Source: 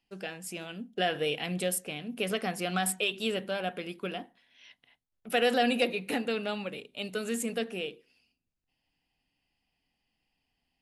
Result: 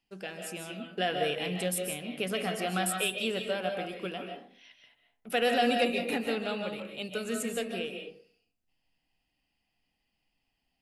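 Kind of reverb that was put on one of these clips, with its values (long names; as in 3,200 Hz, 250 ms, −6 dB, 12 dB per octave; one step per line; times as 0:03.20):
comb and all-pass reverb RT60 0.51 s, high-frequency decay 0.45×, pre-delay 110 ms, DRR 3.5 dB
level −1.5 dB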